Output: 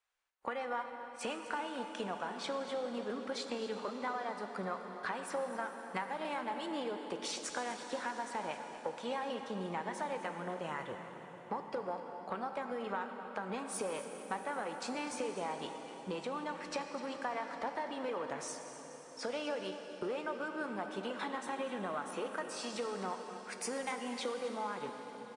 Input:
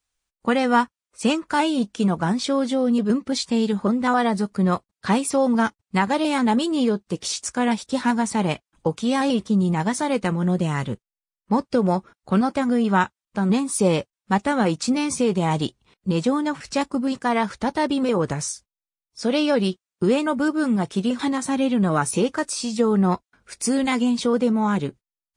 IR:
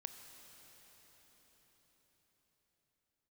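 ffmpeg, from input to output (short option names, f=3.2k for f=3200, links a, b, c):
-filter_complex "[0:a]acontrast=88,acrossover=split=450 2800:gain=0.0891 1 0.224[a][b][c];[a][b][c]amix=inputs=3:normalize=0,acompressor=threshold=-30dB:ratio=6,aecho=1:1:251:0.188[d];[1:a]atrim=start_sample=2205,asetrate=48510,aresample=44100[e];[d][e]afir=irnorm=-1:irlink=0,volume=-1dB"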